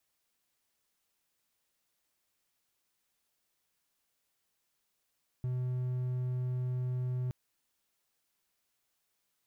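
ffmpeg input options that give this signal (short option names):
-f lavfi -i "aevalsrc='0.0355*(1-4*abs(mod(126*t+0.25,1)-0.5))':d=1.87:s=44100"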